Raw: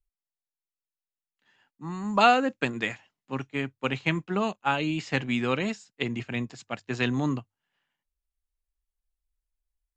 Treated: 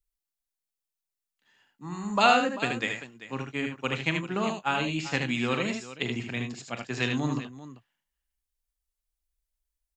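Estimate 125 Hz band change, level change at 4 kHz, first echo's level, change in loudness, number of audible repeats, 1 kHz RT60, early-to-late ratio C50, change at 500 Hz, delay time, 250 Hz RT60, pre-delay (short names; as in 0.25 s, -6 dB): -1.0 dB, +2.0 dB, -12.0 dB, -1.0 dB, 3, none, none, -1.5 dB, 40 ms, none, none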